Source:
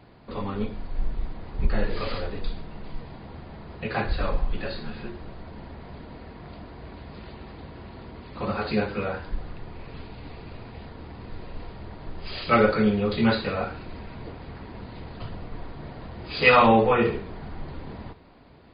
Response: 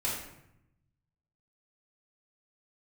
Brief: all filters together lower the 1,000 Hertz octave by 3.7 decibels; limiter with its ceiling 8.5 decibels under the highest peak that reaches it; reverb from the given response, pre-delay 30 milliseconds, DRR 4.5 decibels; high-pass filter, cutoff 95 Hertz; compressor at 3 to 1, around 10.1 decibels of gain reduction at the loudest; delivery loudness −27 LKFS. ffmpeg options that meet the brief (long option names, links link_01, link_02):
-filter_complex "[0:a]highpass=95,equalizer=frequency=1000:width_type=o:gain=-5,acompressor=threshold=-28dB:ratio=3,alimiter=limit=-23dB:level=0:latency=1,asplit=2[link_01][link_02];[1:a]atrim=start_sample=2205,adelay=30[link_03];[link_02][link_03]afir=irnorm=-1:irlink=0,volume=-10.5dB[link_04];[link_01][link_04]amix=inputs=2:normalize=0,volume=8.5dB"